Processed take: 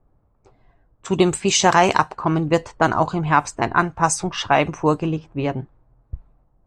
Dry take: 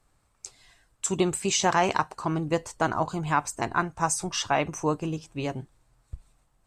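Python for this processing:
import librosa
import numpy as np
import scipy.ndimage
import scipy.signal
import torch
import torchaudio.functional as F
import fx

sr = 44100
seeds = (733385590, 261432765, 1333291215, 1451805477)

y = fx.env_lowpass(x, sr, base_hz=650.0, full_db=-19.5)
y = F.gain(torch.from_numpy(y), 8.0).numpy()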